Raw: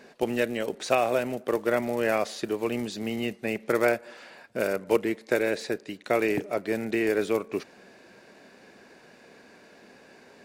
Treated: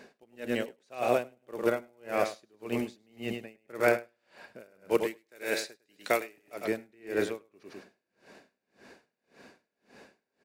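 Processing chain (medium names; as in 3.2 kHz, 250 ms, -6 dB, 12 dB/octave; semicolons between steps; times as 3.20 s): 1.54–2.09 s: band-stop 1.8 kHz, Q 7.7; 4.97–6.65 s: tilt EQ +2.5 dB/octave; feedback delay 103 ms, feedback 33%, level -8 dB; logarithmic tremolo 1.8 Hz, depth 35 dB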